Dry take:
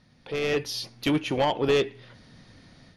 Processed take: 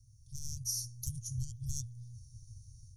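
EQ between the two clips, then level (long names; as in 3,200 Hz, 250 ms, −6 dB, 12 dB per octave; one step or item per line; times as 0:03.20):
Chebyshev band-stop filter 120–5,800 Hz, order 5
notch filter 5,000 Hz, Q 12
+6.0 dB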